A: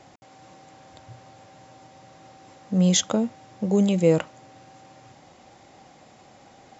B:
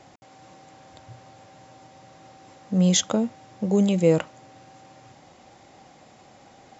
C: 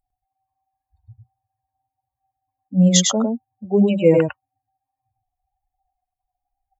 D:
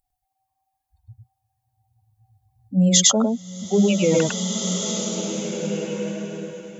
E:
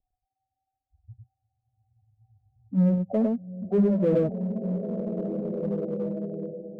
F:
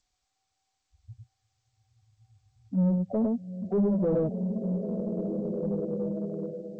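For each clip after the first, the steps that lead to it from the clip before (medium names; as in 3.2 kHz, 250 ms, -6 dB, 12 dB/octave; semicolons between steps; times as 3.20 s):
no audible change
expander on every frequency bin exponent 3; on a send: delay 103 ms -3.5 dB; on the sum: trim +7.5 dB
peak limiter -10.5 dBFS, peak gain reduction 8 dB; treble shelf 2.7 kHz +9.5 dB; swelling reverb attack 1890 ms, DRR 5.5 dB
steep low-pass 740 Hz 96 dB/octave; in parallel at -7 dB: hard clipper -25 dBFS, distortion -5 dB; on the sum: trim -5 dB
saturation -19.5 dBFS, distortion -15 dB; low-pass that closes with the level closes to 710 Hz, closed at -27.5 dBFS; G.722 64 kbps 16 kHz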